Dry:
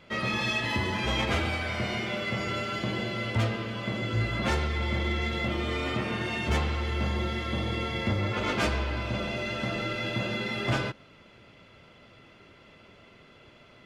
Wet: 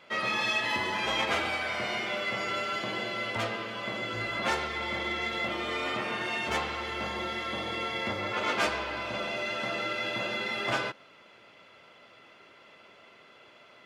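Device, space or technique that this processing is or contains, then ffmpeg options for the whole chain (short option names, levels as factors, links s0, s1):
filter by subtraction: -filter_complex "[0:a]asplit=2[s0][s1];[s1]lowpass=830,volume=-1[s2];[s0][s2]amix=inputs=2:normalize=0"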